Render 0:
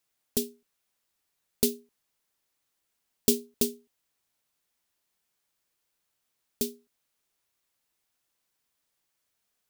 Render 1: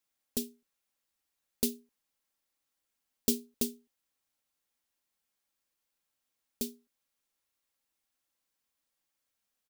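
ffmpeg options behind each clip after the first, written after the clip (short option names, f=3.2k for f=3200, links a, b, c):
-af "aecho=1:1:3.7:0.34,volume=-5.5dB"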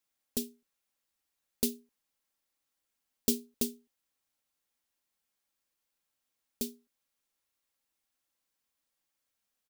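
-af anull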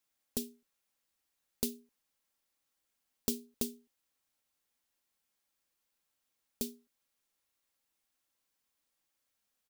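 -af "acompressor=threshold=-35dB:ratio=2,volume=1dB"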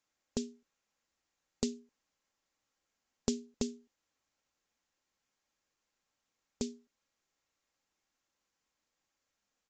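-af "equalizer=f=3.7k:t=o:w=1.2:g=-4.5,volume=3.5dB" -ar 16000 -c:a aac -b:a 64k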